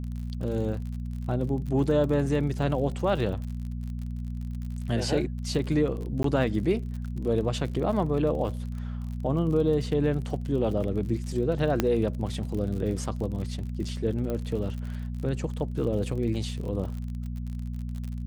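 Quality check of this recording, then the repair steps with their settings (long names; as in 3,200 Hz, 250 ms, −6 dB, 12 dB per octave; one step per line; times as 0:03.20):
surface crackle 48 per second −35 dBFS
mains hum 60 Hz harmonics 4 −33 dBFS
0:06.23–0:06.24: drop-out 13 ms
0:11.80: click −9 dBFS
0:14.30: click −20 dBFS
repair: click removal
hum removal 60 Hz, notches 4
repair the gap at 0:06.23, 13 ms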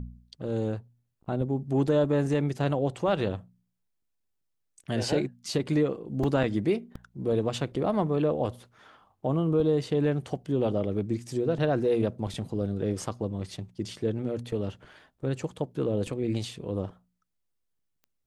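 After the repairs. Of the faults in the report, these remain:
none of them is left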